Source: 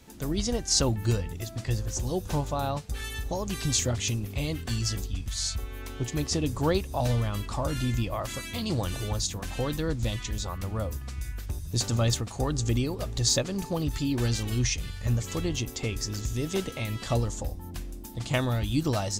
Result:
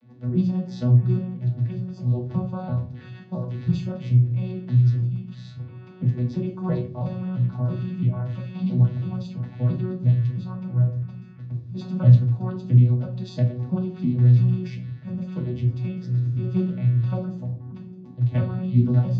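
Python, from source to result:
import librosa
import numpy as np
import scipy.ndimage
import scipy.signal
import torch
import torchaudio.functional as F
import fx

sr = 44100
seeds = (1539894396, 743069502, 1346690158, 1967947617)

y = fx.vocoder_arp(x, sr, chord='bare fifth', root=47, every_ms=334)
y = scipy.signal.sosfilt(scipy.signal.butter(4, 4400.0, 'lowpass', fs=sr, output='sos'), y)
y = fx.low_shelf(y, sr, hz=150.0, db=9.0)
y = fx.notch_comb(y, sr, f0_hz=410.0)
y = fx.room_shoebox(y, sr, seeds[0], volume_m3=250.0, walls='furnished', distance_m=1.5)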